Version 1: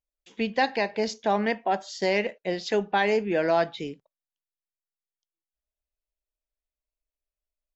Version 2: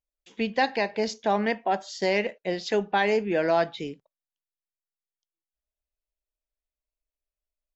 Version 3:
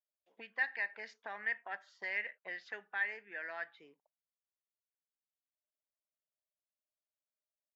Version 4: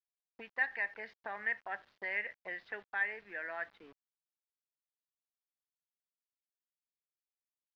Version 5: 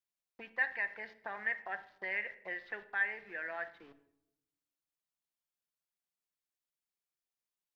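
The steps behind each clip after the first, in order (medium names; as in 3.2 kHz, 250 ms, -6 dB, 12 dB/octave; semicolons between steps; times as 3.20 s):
no audible change
gain riding 0.5 s; auto-wah 610–1800 Hz, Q 5.8, up, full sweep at -24 dBFS; trim -1.5 dB
bit crusher 10-bit; distance through air 310 m; trim +4 dB
reverberation RT60 0.85 s, pre-delay 6 ms, DRR 10 dB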